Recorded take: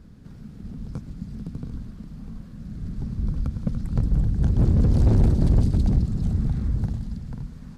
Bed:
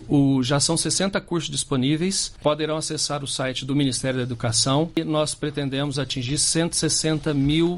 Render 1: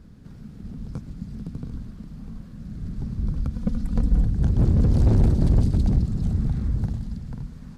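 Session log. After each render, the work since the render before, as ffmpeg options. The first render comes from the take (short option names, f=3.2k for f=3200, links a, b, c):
-filter_complex "[0:a]asettb=1/sr,asplit=3[a][b][c];[a]atrim=end=3.534[d];[b]atrim=start=3.53:end=4.26,asetpts=PTS-STARTPTS,afade=t=in:d=0.004:c=qsin,afade=t=out:st=0.726:d=0.004:c=qsin,aecho=1:1:4.1:0.65,atrim=end_sample=32193[e];[c]atrim=start=4.256[f];[d][e]acrossfade=d=0.004:c1=hsin:c2=qsin[g];[g][f]acrossfade=d=0.004:c1=qsin:c2=hsin"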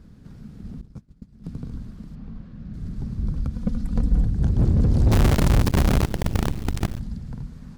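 -filter_complex "[0:a]asettb=1/sr,asplit=3[a][b][c];[a]atrim=end=0.814[d];[b]atrim=start=0.81:end=1.44,asetpts=PTS-STARTPTS,afade=t=in:d=0.004:c=qsin,afade=t=out:st=0.626:d=0.004:c=qsin,agate=range=-33dB:threshold=-25dB:ratio=3:release=100:detection=peak[e];[c]atrim=start=1.436[f];[d][e]acrossfade=d=0.004:c1=hsin:c2=qsin[g];[g][f]acrossfade=d=0.004:c1=qsin:c2=hsin,asettb=1/sr,asplit=3[h][i][j];[h]atrim=end=2.154[k];[i]atrim=start=2.15:end=2.74,asetpts=PTS-STARTPTS,afade=t=in:d=0.004:c=qsin,afade=t=out:st=0.586:d=0.004:c=qsin,lowpass=3.7k[l];[j]atrim=start=2.736[m];[k][l]acrossfade=d=0.004:c1=hsin:c2=qsin[n];[n][m]acrossfade=d=0.004:c1=qsin:c2=hsin,asplit=3[o][p][q];[o]afade=t=out:st=5.11:d=0.02[r];[p]acrusher=bits=4:dc=4:mix=0:aa=0.000001,afade=t=in:st=5.11:d=0.02,afade=t=out:st=6.98:d=0.02[s];[q]afade=t=in:st=6.98:d=0.02[t];[r][s][t]amix=inputs=3:normalize=0"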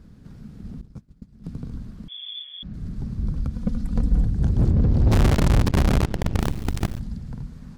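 -filter_complex "[0:a]asettb=1/sr,asplit=3[a][b][c];[a]atrim=end=2.084[d];[b]atrim=start=2.08:end=2.63,asetpts=PTS-STARTPTS,afade=t=in:d=0.004:c=qsin,afade=t=out:st=0.546:d=0.004:c=qsin,lowpass=f=3k:t=q:w=0.5098,lowpass=f=3k:t=q:w=0.6013,lowpass=f=3k:t=q:w=0.9,lowpass=f=3k:t=q:w=2.563,afreqshift=-3500[e];[c]atrim=start=2.626[f];[d][e]acrossfade=d=0.004:c1=hsin:c2=qsin[g];[g][f]acrossfade=d=0.004:c1=qsin:c2=hsin,asettb=1/sr,asplit=3[h][i][j];[h]atrim=end=4.714[k];[i]atrim=start=4.71:end=6.4,asetpts=PTS-STARTPTS,afade=t=in:d=0.004:c=qsin,afade=t=out:st=1.686:d=0.004:c=qsin,adynamicsmooth=sensitivity=8:basefreq=2.6k[l];[j]atrim=start=6.396[m];[k][l]acrossfade=d=0.004:c1=hsin:c2=qsin[n];[n][m]acrossfade=d=0.004:c1=qsin:c2=hsin"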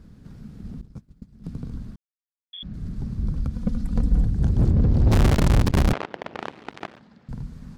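-filter_complex "[0:a]asettb=1/sr,asplit=3[a][b][c];[a]atrim=end=5.934[d];[b]atrim=start=5.93:end=7.29,asetpts=PTS-STARTPTS,afade=t=in:d=0.004:c=qsin,afade=t=out:st=1.356:d=0.004:c=qsin,highpass=500,lowpass=2.8k[e];[c]atrim=start=7.286[f];[d][e]acrossfade=d=0.004:c1=hsin:c2=qsin[g];[g][f]acrossfade=d=0.004:c1=qsin:c2=hsin,asplit=3[h][i][j];[h]atrim=end=1.96,asetpts=PTS-STARTPTS,afade=t=out:st=1.956:d=0.004:c=hsin[k];[i]atrim=start=1.96:end=2.53,asetpts=PTS-STARTPTS,volume=0[l];[j]atrim=start=2.53,asetpts=PTS-STARTPTS,afade=t=in:d=0.004:c=hsin[m];[k][l][m]concat=n=3:v=0:a=1"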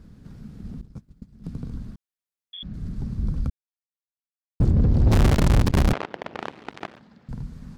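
-filter_complex "[0:a]asplit=3[a][b][c];[a]atrim=end=3.5,asetpts=PTS-STARTPTS,afade=t=out:st=3.496:d=0.004:c=hsin[d];[b]atrim=start=3.5:end=4.6,asetpts=PTS-STARTPTS,volume=0[e];[c]atrim=start=4.6,asetpts=PTS-STARTPTS,afade=t=in:d=0.004:c=hsin[f];[d][e][f]concat=n=3:v=0:a=1"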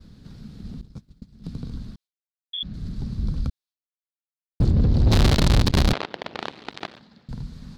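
-af "agate=range=-33dB:threshold=-50dB:ratio=3:detection=peak,equalizer=f=4.1k:t=o:w=0.88:g=11.5"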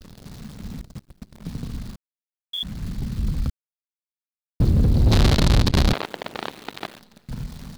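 -filter_complex "[0:a]asplit=2[a][b];[b]asoftclip=type=tanh:threshold=-21.5dB,volume=-12dB[c];[a][c]amix=inputs=2:normalize=0,acrusher=bits=8:dc=4:mix=0:aa=0.000001"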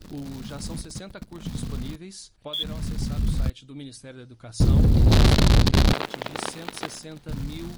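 -filter_complex "[1:a]volume=-18dB[a];[0:a][a]amix=inputs=2:normalize=0"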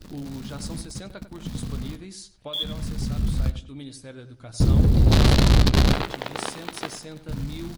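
-filter_complex "[0:a]asplit=2[a][b];[b]adelay=15,volume=-13.5dB[c];[a][c]amix=inputs=2:normalize=0,asplit=2[d][e];[e]adelay=96,lowpass=f=2.4k:p=1,volume=-11.5dB,asplit=2[f][g];[g]adelay=96,lowpass=f=2.4k:p=1,volume=0.29,asplit=2[h][i];[i]adelay=96,lowpass=f=2.4k:p=1,volume=0.29[j];[f][h][j]amix=inputs=3:normalize=0[k];[d][k]amix=inputs=2:normalize=0"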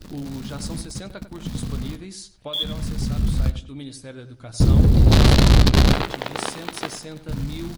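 -af "volume=3dB"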